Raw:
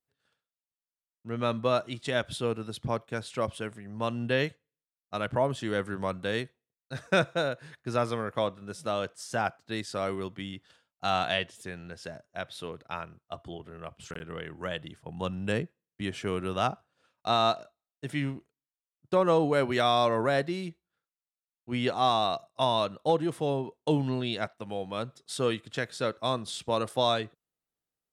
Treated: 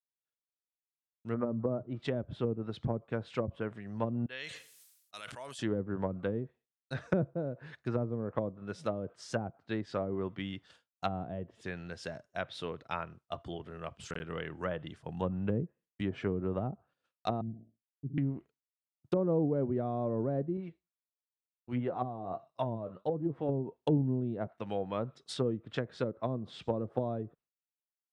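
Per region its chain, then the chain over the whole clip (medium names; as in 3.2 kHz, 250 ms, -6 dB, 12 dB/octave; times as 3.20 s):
1.34–1.83 s: low-pass 1.8 kHz 24 dB/octave + hum notches 60/120/180 Hz
4.26–5.59 s: pre-emphasis filter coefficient 0.97 + decay stretcher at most 34 dB/s
17.41–18.18 s: inverse Chebyshev low-pass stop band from 1.2 kHz, stop band 70 dB + flutter echo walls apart 10.8 m, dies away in 0.35 s
20.57–23.49 s: flange 1.5 Hz, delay 5.3 ms, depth 7.2 ms, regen +49% + treble shelf 3.9 kHz -9 dB
whole clip: low-pass that closes with the level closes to 360 Hz, closed at -26 dBFS; expander -58 dBFS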